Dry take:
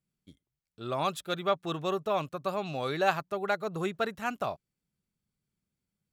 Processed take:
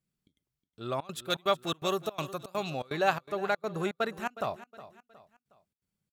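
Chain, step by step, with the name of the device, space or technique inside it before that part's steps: 1.30–2.70 s: treble shelf 3.9 kHz +12 dB; trance gate with a delay (trance gate "xxx.xxx.xxx." 165 bpm -24 dB; feedback delay 364 ms, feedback 39%, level -16 dB)

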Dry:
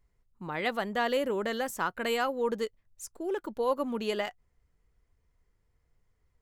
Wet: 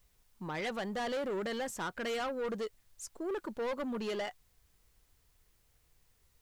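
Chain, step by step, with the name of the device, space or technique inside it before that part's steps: compact cassette (saturation -32 dBFS, distortion -8 dB; low-pass 9.7 kHz 12 dB/octave; wow and flutter 21 cents; white noise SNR 35 dB)

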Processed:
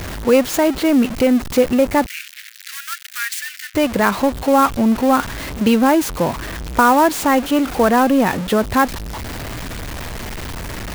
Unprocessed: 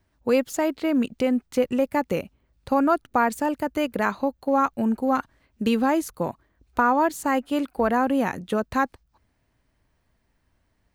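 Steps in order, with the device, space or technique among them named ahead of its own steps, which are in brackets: early CD player with a faulty converter (jump at every zero crossing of -28 dBFS; sampling jitter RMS 0.021 ms); 2.06–3.75 s: steep high-pass 1.6 kHz 48 dB/octave; trim +6.5 dB

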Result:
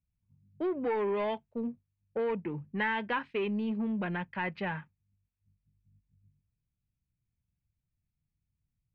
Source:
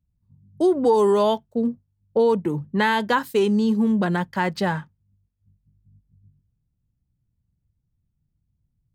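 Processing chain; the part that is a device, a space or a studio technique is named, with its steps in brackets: overdriven synthesiser ladder filter (saturation -14 dBFS, distortion -18 dB; four-pole ladder low-pass 2.7 kHz, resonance 65%)

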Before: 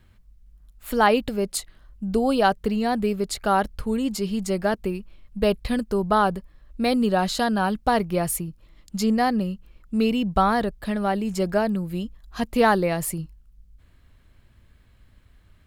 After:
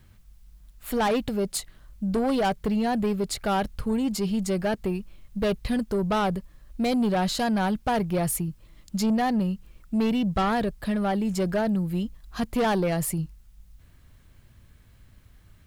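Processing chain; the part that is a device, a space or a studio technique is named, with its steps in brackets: open-reel tape (saturation -20 dBFS, distortion -10 dB; peaking EQ 130 Hz +4.5 dB 1.17 oct; white noise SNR 44 dB)

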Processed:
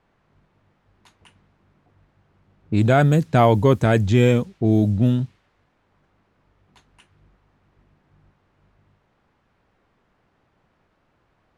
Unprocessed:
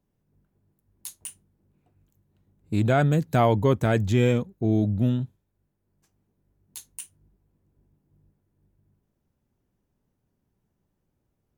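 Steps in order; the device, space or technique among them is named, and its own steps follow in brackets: cassette deck with a dynamic noise filter (white noise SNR 33 dB; level-controlled noise filter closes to 1.3 kHz, open at -16.5 dBFS); trim +5 dB

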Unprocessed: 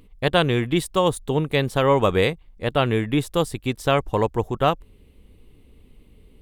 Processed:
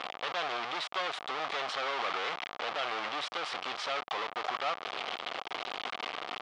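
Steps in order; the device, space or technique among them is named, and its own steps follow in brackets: home computer beeper (one-bit comparator; cabinet simulation 720–4600 Hz, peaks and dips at 740 Hz +7 dB, 1.2 kHz +8 dB, 2.2 kHz +3 dB, 3.2 kHz +4 dB); trim -8 dB

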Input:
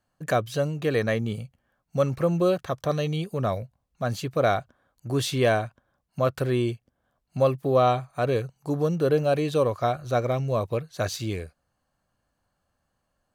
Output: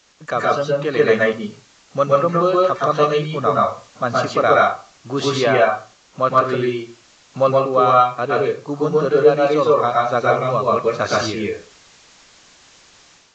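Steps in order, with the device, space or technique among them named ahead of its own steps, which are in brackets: reverb removal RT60 0.95 s; filmed off a television (band-pass 180–6700 Hz; peaking EQ 1.2 kHz +10.5 dB 0.37 oct; reverberation RT60 0.35 s, pre-delay 111 ms, DRR -3.5 dB; white noise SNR 30 dB; level rider gain up to 8 dB; AAC 32 kbps 16 kHz)

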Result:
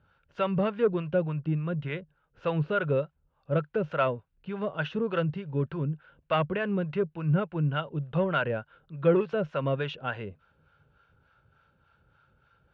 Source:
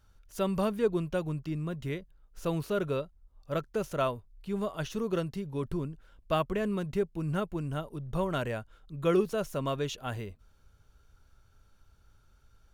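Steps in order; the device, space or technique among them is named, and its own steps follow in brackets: 7.72–8.33 s: peaking EQ 3.1 kHz +5 dB 0.8 oct; guitar amplifier with harmonic tremolo (harmonic tremolo 3.4 Hz, depth 70%, crossover 610 Hz; saturation -21.5 dBFS, distortion -20 dB; cabinet simulation 93–3400 Hz, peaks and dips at 150 Hz +9 dB, 520 Hz +7 dB, 870 Hz +4 dB, 1.5 kHz +9 dB, 2.7 kHz +5 dB); trim +3.5 dB

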